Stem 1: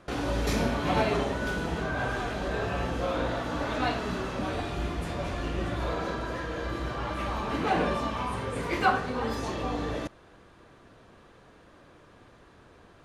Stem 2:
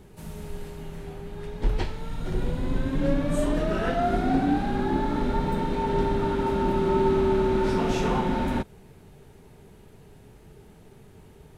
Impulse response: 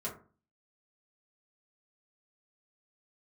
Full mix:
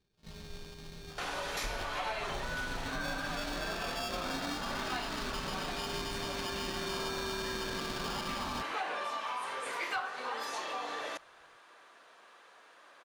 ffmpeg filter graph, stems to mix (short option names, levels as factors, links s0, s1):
-filter_complex "[0:a]highpass=830,asoftclip=type=tanh:threshold=0.133,adelay=1100,volume=1.26[s0];[1:a]acrusher=samples=22:mix=1:aa=0.000001,agate=range=0.112:threshold=0.0126:ratio=16:detection=peak,equalizer=f=4300:t=o:w=1.4:g=13.5,volume=0.282[s1];[s0][s1]amix=inputs=2:normalize=0,acompressor=threshold=0.02:ratio=4"